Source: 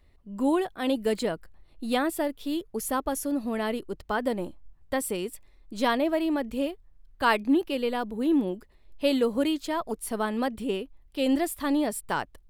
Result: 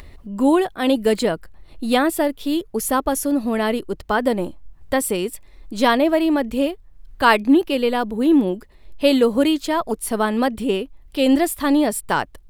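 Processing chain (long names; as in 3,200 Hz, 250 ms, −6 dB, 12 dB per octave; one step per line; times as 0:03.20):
upward compression, threshold −39 dBFS
level +8.5 dB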